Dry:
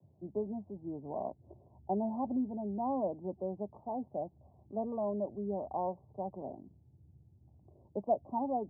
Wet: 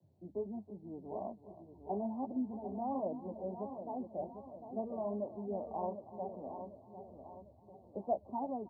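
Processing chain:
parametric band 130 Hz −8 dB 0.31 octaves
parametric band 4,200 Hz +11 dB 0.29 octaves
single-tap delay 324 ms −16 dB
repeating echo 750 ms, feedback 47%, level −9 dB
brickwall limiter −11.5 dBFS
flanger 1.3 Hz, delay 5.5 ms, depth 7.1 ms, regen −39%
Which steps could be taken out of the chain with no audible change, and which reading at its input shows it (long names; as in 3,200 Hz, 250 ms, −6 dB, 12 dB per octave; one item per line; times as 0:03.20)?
parametric band 4,200 Hz: nothing at its input above 1,100 Hz
brickwall limiter −11.5 dBFS: peak of its input −19.0 dBFS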